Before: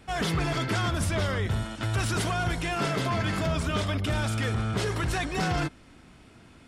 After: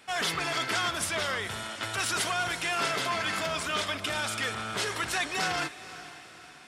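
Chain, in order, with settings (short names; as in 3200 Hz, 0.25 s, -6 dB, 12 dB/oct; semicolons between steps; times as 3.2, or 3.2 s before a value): HPF 1200 Hz 6 dB/oct; diffused feedback echo 0.496 s, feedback 49%, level -15 dB; gain +4 dB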